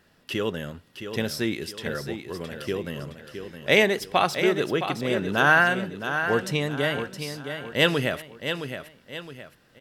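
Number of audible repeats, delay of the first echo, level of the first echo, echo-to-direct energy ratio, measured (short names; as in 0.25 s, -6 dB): 3, 0.666 s, -8.5 dB, -8.0 dB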